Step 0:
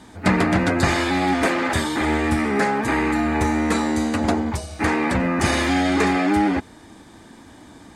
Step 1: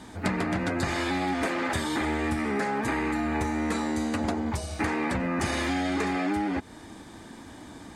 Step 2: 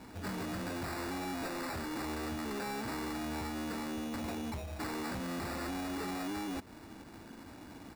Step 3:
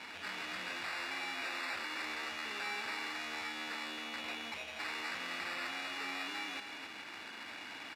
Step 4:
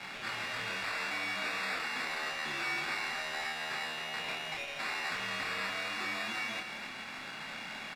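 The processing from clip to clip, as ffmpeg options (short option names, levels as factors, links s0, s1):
-af "acompressor=threshold=0.0562:ratio=6"
-af "aresample=8000,asoftclip=type=tanh:threshold=0.0316,aresample=44100,acrusher=samples=14:mix=1:aa=0.000001,volume=0.562"
-af "alimiter=level_in=7.94:limit=0.0631:level=0:latency=1:release=22,volume=0.126,bandpass=f=2600:t=q:w=1.6:csg=0,aecho=1:1:166.2|268.2:0.251|0.398,volume=5.96"
-filter_complex "[0:a]afreqshift=-67,asplit=2[s0][s1];[s1]adelay=27,volume=0.708[s2];[s0][s2]amix=inputs=2:normalize=0,volume=1.33"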